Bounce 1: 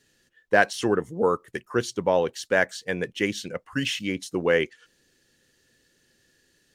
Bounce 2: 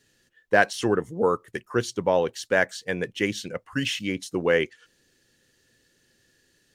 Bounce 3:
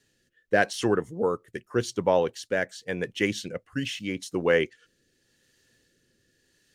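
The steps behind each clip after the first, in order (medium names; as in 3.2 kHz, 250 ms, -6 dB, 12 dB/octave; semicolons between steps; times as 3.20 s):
peaking EQ 110 Hz +4 dB 0.24 oct
rotary cabinet horn 0.85 Hz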